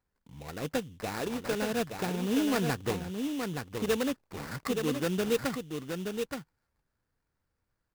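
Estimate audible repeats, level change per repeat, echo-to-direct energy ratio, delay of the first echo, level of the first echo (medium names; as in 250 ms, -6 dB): 1, no regular repeats, -5.5 dB, 873 ms, -5.5 dB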